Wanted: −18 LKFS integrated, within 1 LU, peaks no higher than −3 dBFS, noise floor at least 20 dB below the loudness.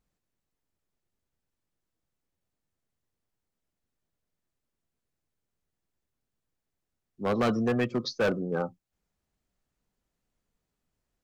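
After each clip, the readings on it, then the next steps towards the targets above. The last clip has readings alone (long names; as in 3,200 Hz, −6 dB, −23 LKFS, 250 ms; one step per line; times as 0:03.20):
share of clipped samples 0.5%; peaks flattened at −21.0 dBFS; integrated loudness −29.0 LKFS; sample peak −21.0 dBFS; target loudness −18.0 LKFS
→ clipped peaks rebuilt −21 dBFS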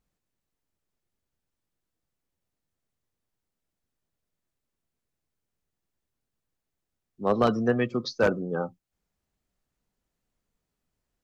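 share of clipped samples 0.0%; integrated loudness −26.5 LKFS; sample peak −12.0 dBFS; target loudness −18.0 LKFS
→ level +8.5 dB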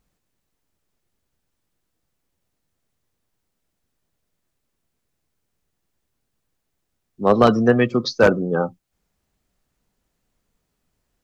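integrated loudness −18.0 LKFS; sample peak −3.5 dBFS; background noise floor −77 dBFS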